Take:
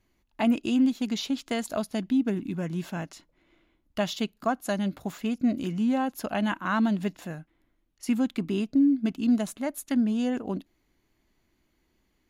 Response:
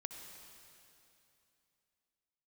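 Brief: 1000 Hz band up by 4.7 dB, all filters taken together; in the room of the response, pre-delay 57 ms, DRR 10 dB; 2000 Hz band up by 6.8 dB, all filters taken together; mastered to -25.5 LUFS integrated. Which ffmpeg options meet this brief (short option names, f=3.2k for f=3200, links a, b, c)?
-filter_complex "[0:a]equalizer=f=1k:t=o:g=4.5,equalizer=f=2k:t=o:g=7.5,asplit=2[a][b];[1:a]atrim=start_sample=2205,adelay=57[c];[b][c]afir=irnorm=-1:irlink=0,volume=-7.5dB[d];[a][d]amix=inputs=2:normalize=0,volume=1dB"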